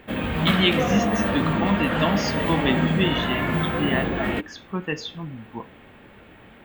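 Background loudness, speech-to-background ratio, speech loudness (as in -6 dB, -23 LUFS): -24.0 LUFS, -2.0 dB, -26.0 LUFS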